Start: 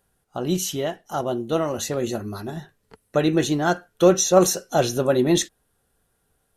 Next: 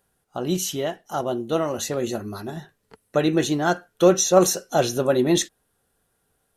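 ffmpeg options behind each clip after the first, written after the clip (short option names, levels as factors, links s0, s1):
-af "lowshelf=f=91:g=-6.5"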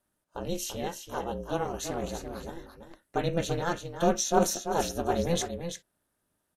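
-af "aecho=1:1:338:0.398,aeval=exprs='val(0)*sin(2*PI*170*n/s)':c=same,volume=0.531"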